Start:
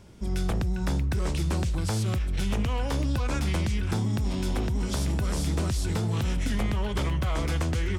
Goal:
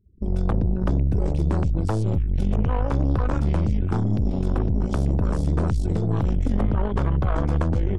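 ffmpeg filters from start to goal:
-af "afftfilt=real='re*gte(hypot(re,im),0.00708)':imag='im*gte(hypot(re,im),0.00708)':win_size=1024:overlap=0.75,afwtdn=0.0224,aeval=exprs='0.126*(cos(1*acos(clip(val(0)/0.126,-1,1)))-cos(1*PI/2))+0.02*(cos(4*acos(clip(val(0)/0.126,-1,1)))-cos(4*PI/2))+0.00398*(cos(7*acos(clip(val(0)/0.126,-1,1)))-cos(7*PI/2))':c=same,volume=1.68"

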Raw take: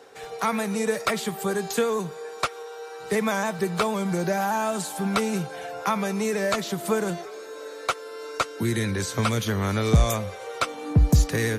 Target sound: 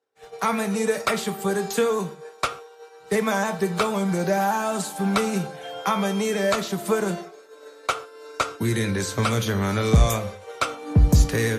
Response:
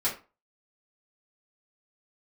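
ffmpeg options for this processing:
-filter_complex "[0:a]asettb=1/sr,asplit=3[s0][s1][s2];[s0]atrim=end=5.634[s3];[s1]atrim=start=5.63:end=6.5,asetpts=PTS-STARTPTS,afade=t=in:d=0.004:c=qsin,afade=t=out:st=0.866:d=0.004:c=qsin,aeval=exprs='val(0)+0.0126*sin(2*PI*3200*n/s)':c=same[s4];[s2]atrim=start=6.496[s5];[s3][s4]acrossfade=d=0.004:c1=hsin:c2=qsin[s6];[s6][s5]acrossfade=d=0.004:c1=qsin:c2=hsin,agate=range=0.0224:threshold=0.0316:ratio=3:detection=peak,asplit=2[s7][s8];[1:a]atrim=start_sample=2205,atrim=end_sample=3969,asetrate=26901,aresample=44100[s9];[s8][s9]afir=irnorm=-1:irlink=0,volume=0.119[s10];[s7][s10]amix=inputs=2:normalize=0"

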